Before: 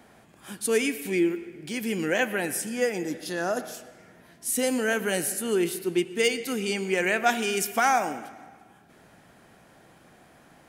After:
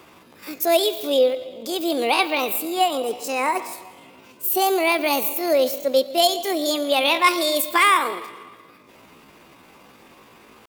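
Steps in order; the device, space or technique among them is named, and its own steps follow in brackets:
chipmunk voice (pitch shifter +7 semitones)
level +6 dB

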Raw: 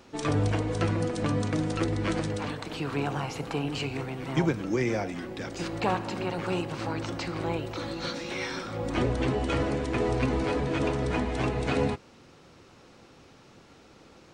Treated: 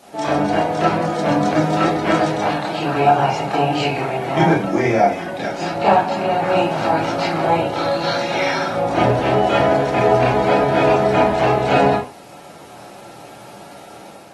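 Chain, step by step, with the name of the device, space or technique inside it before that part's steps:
filmed off a television (band-pass filter 160–6,400 Hz; parametric band 700 Hz +11.5 dB 0.58 octaves; convolution reverb RT60 0.35 s, pre-delay 23 ms, DRR −6.5 dB; white noise bed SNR 32 dB; automatic gain control gain up to 4.5 dB; AAC 32 kbit/s 48,000 Hz)

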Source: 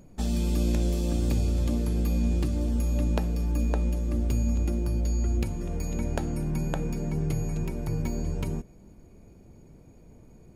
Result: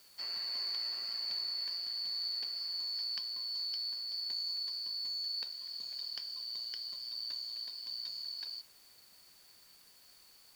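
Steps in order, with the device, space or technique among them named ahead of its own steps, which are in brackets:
split-band scrambled radio (band-splitting scrambler in four parts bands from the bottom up 4321; band-pass filter 320–3,100 Hz; white noise bed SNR 23 dB)
level −6 dB

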